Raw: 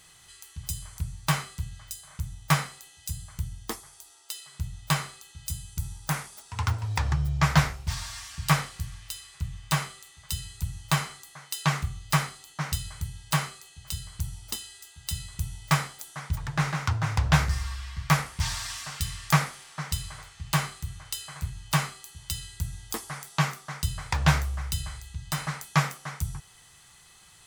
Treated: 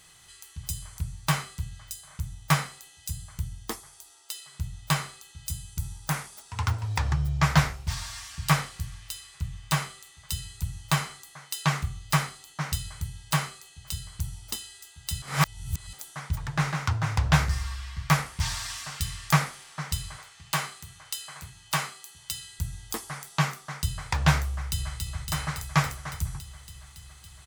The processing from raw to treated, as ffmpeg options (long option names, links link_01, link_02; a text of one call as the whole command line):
ffmpeg -i in.wav -filter_complex "[0:a]asettb=1/sr,asplit=3[link_01][link_02][link_03];[link_01]atrim=end=20.174[link_04];[link_02]atrim=start=20.17:end=22.59,asetpts=PTS-STARTPTS,afade=type=in:duration=0.004:curve=qsin,afade=type=out:start_time=2.416:duration=0.004:curve=qsin,highpass=frequency=350:poles=1[link_05];[link_03]atrim=start=22.586[link_06];[link_04][link_05]acrossfade=duration=0.004:curve1=hsin:curve2=qsin[link_07];[link_07][link_06]acrossfade=duration=0.004:curve1=qsin:curve2=hsin,asplit=2[link_08][link_09];[link_09]afade=type=in:start_time=24.5:duration=0.01,afade=type=out:start_time=24.97:duration=0.01,aecho=0:1:280|560|840|1120|1400|1680|1960|2240|2520|2800|3080|3360:0.595662|0.47653|0.381224|0.304979|0.243983|0.195187|0.156149|0.124919|0.0999355|0.0799484|0.0639587|0.051167[link_10];[link_08][link_10]amix=inputs=2:normalize=0,asplit=3[link_11][link_12][link_13];[link_11]atrim=end=15.222[link_14];[link_12]atrim=start=15.218:end=15.932,asetpts=PTS-STARTPTS,areverse[link_15];[link_13]atrim=start=15.928[link_16];[link_14][link_15]acrossfade=duration=0.004:curve1=hsin:curve2=hsin[link_17];[link_17][link_16]acrossfade=duration=0.004:curve1=hsin:curve2=hsin" out.wav